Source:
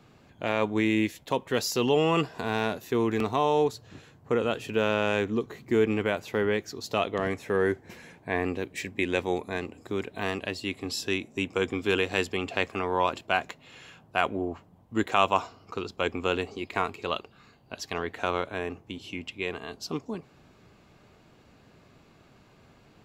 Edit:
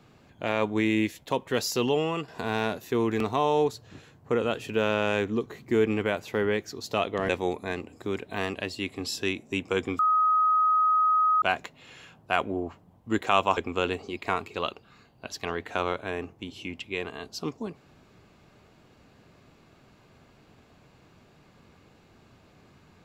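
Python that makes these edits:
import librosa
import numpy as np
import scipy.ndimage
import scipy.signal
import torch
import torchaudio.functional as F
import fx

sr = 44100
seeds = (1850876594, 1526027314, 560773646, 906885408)

y = fx.edit(x, sr, fx.fade_out_to(start_s=1.8, length_s=0.48, floor_db=-10.5),
    fx.cut(start_s=7.29, length_s=1.85),
    fx.bleep(start_s=11.84, length_s=1.43, hz=1260.0, db=-19.0),
    fx.cut(start_s=15.42, length_s=0.63), tone=tone)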